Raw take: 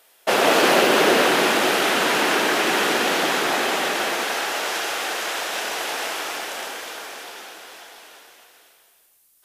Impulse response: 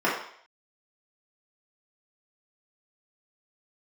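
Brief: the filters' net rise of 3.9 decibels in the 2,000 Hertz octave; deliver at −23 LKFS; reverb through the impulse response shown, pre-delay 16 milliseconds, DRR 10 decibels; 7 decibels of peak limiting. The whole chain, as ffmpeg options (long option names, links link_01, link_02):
-filter_complex "[0:a]equalizer=frequency=2000:width_type=o:gain=5,alimiter=limit=-10dB:level=0:latency=1,asplit=2[link_01][link_02];[1:a]atrim=start_sample=2205,adelay=16[link_03];[link_02][link_03]afir=irnorm=-1:irlink=0,volume=-26dB[link_04];[link_01][link_04]amix=inputs=2:normalize=0,volume=-3.5dB"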